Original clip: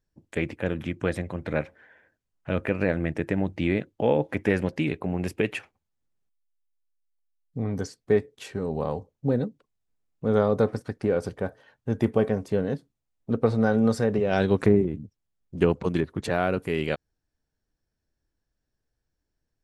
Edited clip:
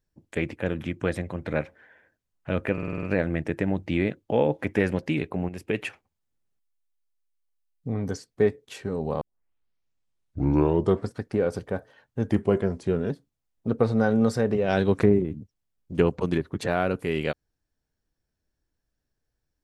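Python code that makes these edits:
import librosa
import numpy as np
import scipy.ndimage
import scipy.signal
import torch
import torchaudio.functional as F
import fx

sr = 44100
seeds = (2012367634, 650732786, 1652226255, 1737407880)

y = fx.edit(x, sr, fx.stutter(start_s=2.73, slice_s=0.05, count=7),
    fx.fade_in_from(start_s=5.19, length_s=0.33, floor_db=-12.0),
    fx.tape_start(start_s=8.91, length_s=1.96),
    fx.speed_span(start_s=12.01, length_s=0.72, speed=0.91), tone=tone)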